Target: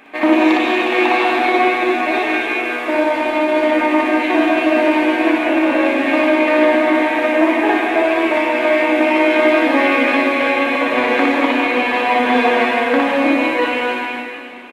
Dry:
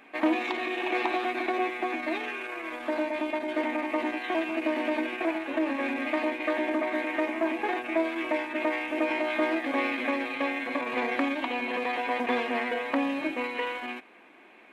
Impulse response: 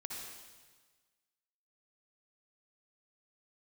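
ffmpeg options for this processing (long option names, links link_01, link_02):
-filter_complex "[0:a]asplit=2[link_01][link_02];[link_02]adelay=36,volume=-12.5dB[link_03];[link_01][link_03]amix=inputs=2:normalize=0,asplit=2[link_04][link_05];[1:a]atrim=start_sample=2205,asetrate=28665,aresample=44100,adelay=60[link_06];[link_05][link_06]afir=irnorm=-1:irlink=0,volume=2dB[link_07];[link_04][link_07]amix=inputs=2:normalize=0,volume=8.5dB"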